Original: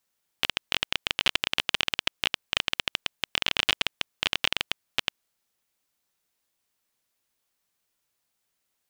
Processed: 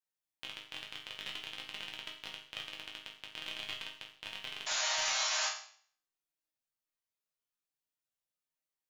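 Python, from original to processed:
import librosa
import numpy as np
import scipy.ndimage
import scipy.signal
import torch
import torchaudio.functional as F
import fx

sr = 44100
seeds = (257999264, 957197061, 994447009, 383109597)

y = fx.spec_paint(x, sr, seeds[0], shape='noise', start_s=4.66, length_s=0.83, low_hz=530.0, high_hz=7300.0, level_db=-17.0)
y = fx.resonator_bank(y, sr, root=44, chord='major', decay_s=0.53)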